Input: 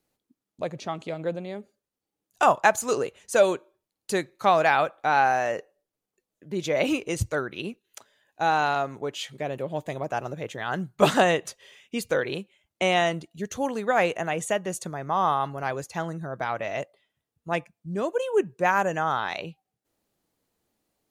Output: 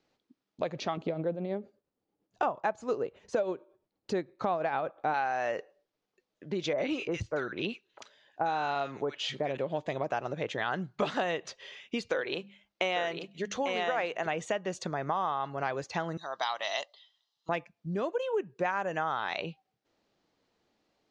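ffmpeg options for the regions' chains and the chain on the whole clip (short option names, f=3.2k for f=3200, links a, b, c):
-filter_complex "[0:a]asettb=1/sr,asplit=3[a][b][c];[a]atrim=end=0.974[d];[b]atrim=start=0.97:end=5.14,asetpts=PTS-STARTPTS,afade=t=in:d=0.004:c=qsin,afade=t=out:st=4.166:d=0.004:c=qsin,tiltshelf=f=1.1k:g=7.5,tremolo=f=8.7:d=0.49[e];[c]atrim=start=5.136[f];[d][e]acrossfade=d=0.004:c1=hsin:c2=qsin[g];[g][f]acrossfade=d=0.004:c1=qsin:c2=hsin,asettb=1/sr,asplit=3[h][i][j];[h]atrim=end=6.734[k];[i]atrim=start=6.73:end=9.57,asetpts=PTS-STARTPTS,afade=t=in:d=0.004:c=qsin,afade=t=out:st=2.836:d=0.004:c=qsin,deesser=0.9,acrossover=split=1500[l][m];[m]adelay=50[n];[l][n]amix=inputs=2:normalize=0,atrim=end_sample=125244[o];[j]atrim=start=9.566[p];[k][o]acrossfade=d=0.004:c1=hsin:c2=qsin[q];[q][p]acrossfade=d=0.004:c1=qsin:c2=hsin,asettb=1/sr,asplit=3[r][s][t];[r]atrim=end=12.084[u];[s]atrim=start=12.08:end=14.27,asetpts=PTS-STARTPTS,afade=t=in:d=0.004:c=qsin,afade=t=out:st=2.186:d=0.004:c=qsin,equalizer=f=93:t=o:w=2.1:g=-10,bandreject=f=50:t=h:w=6,bandreject=f=100:t=h:w=6,bandreject=f=150:t=h:w=6,bandreject=f=200:t=h:w=6,bandreject=f=250:t=h:w=6,aecho=1:1:847:0.562,atrim=end_sample=96579[v];[t]atrim=start=14.266[w];[u][v]acrossfade=d=0.004:c1=hsin:c2=qsin[x];[x][w]acrossfade=d=0.004:c1=qsin:c2=hsin,asettb=1/sr,asplit=3[y][z][aa];[y]atrim=end=16.174[ab];[z]atrim=start=16.17:end=17.49,asetpts=PTS-STARTPTS,afade=t=in:d=0.004:c=qsin,afade=t=out:st=1.316:d=0.004:c=qsin,highpass=770,lowpass=7.3k,highshelf=f=2.9k:t=q:w=3:g=7.5,aecho=1:1:1:0.38,atrim=end_sample=58212[ac];[aa]atrim=start=17.486[ad];[ab][ac]acrossfade=d=0.004:c1=hsin:c2=qsin[ae];[ae][ad]acrossfade=d=0.004:c1=qsin:c2=hsin,acompressor=threshold=-32dB:ratio=6,lowpass=f=5.4k:w=0.5412,lowpass=f=5.4k:w=1.3066,lowshelf=f=170:g=-8,volume=4.5dB"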